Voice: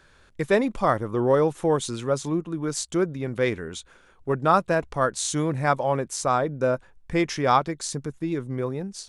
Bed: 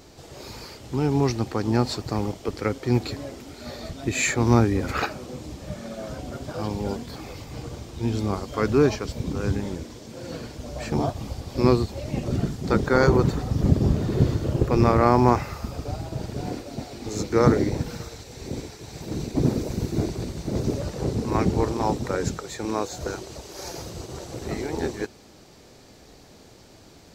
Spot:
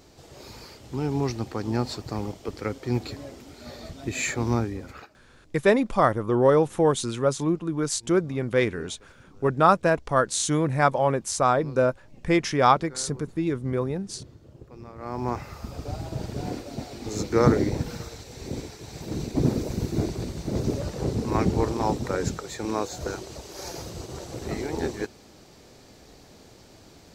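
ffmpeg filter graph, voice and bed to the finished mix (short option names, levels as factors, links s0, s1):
-filter_complex "[0:a]adelay=5150,volume=1.19[s0];[1:a]volume=9.44,afade=t=out:st=4.37:d=0.71:silence=0.0944061,afade=t=in:st=14.96:d=1.11:silence=0.0630957[s1];[s0][s1]amix=inputs=2:normalize=0"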